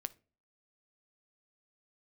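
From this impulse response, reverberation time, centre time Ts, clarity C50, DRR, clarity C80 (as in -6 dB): no single decay rate, 2 ms, 21.5 dB, 14.0 dB, 29.0 dB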